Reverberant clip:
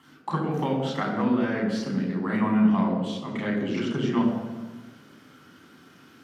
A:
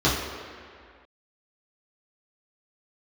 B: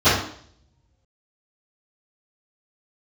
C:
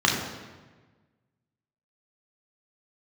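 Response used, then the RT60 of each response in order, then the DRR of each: C; 2.1 s, 0.60 s, 1.3 s; -9.0 dB, -23.0 dB, -2.0 dB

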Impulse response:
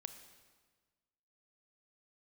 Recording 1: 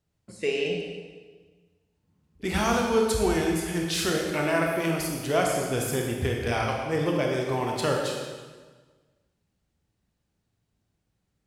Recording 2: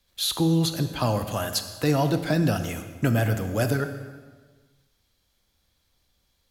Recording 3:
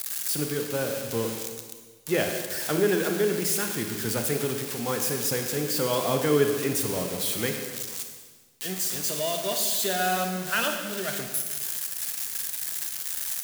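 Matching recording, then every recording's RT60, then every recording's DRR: 2; 1.5 s, 1.4 s, 1.5 s; -0.5 dB, 8.5 dB, 4.0 dB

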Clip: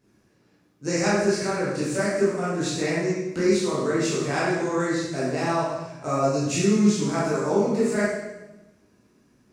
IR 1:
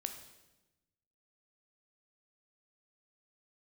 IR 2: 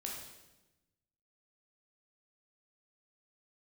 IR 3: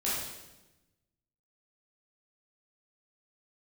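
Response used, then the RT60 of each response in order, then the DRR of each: 3; 1.1 s, 1.1 s, 1.1 s; 6.0 dB, -2.0 dB, -9.0 dB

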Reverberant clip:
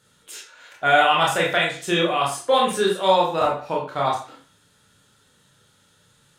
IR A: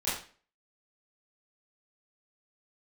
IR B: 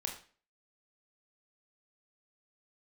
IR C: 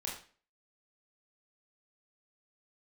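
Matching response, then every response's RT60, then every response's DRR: C; 0.40 s, 0.40 s, 0.40 s; -12.0 dB, 1.5 dB, -3.5 dB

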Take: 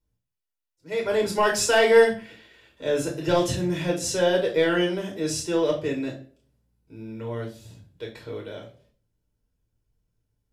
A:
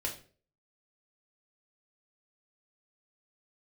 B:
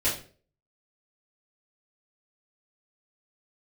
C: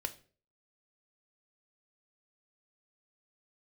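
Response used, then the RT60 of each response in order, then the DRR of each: A; 0.40 s, 0.40 s, 0.45 s; -0.5 dB, -10.0 dB, 8.5 dB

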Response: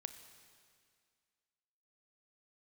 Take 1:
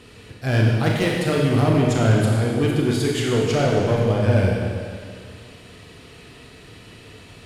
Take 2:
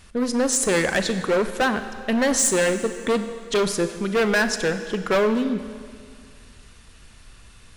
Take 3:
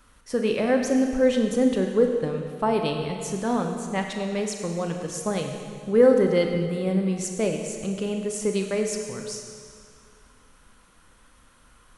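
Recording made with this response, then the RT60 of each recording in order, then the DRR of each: 2; 2.1 s, 2.1 s, 2.1 s; -2.5 dB, 9.0 dB, 3.0 dB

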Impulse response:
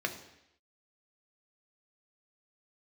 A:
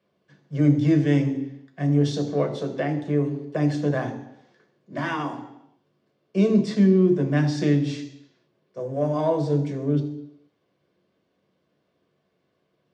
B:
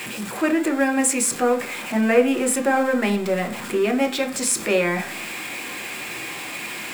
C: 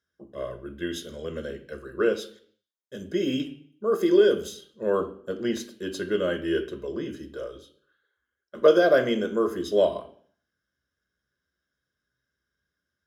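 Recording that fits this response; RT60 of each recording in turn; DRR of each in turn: A; 0.80 s, 0.45 s, 0.55 s; 4.0 dB, 4.0 dB, 7.5 dB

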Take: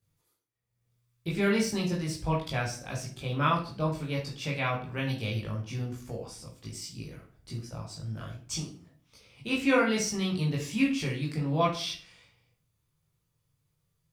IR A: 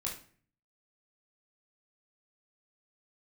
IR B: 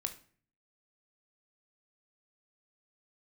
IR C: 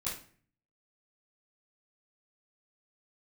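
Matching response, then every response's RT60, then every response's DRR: A; 0.45 s, 0.45 s, 0.45 s; -4.5 dB, 5.0 dB, -13.5 dB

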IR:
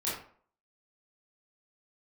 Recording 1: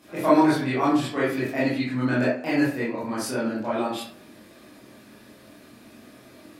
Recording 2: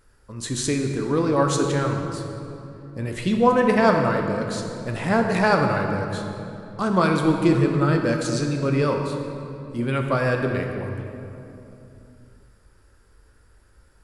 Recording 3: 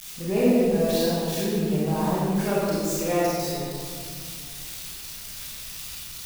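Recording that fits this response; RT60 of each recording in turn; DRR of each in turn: 1; 0.50 s, 3.0 s, 2.2 s; -9.0 dB, 2.5 dB, -9.0 dB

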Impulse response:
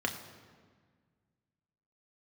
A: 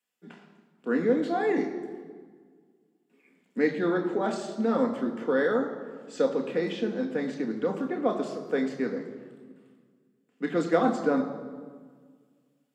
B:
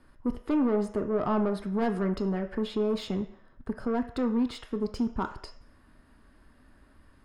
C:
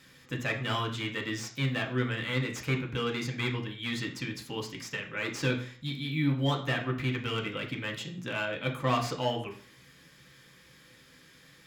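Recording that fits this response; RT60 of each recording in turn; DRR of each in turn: A; 1.6 s, 0.60 s, 0.45 s; 2.5 dB, 6.5 dB, 0.5 dB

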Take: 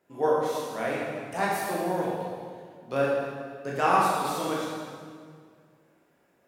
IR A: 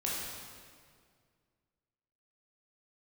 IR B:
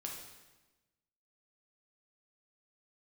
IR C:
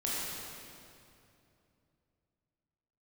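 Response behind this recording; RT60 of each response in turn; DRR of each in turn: A; 2.0 s, 1.1 s, 2.7 s; -6.0 dB, -1.0 dB, -7.0 dB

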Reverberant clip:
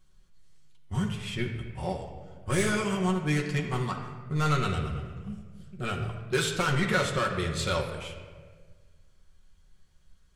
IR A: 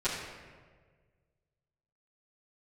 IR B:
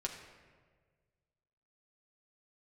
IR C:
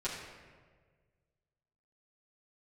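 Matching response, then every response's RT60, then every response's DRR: B; 1.6 s, 1.6 s, 1.6 s; -14.0 dB, 0.0 dB, -9.5 dB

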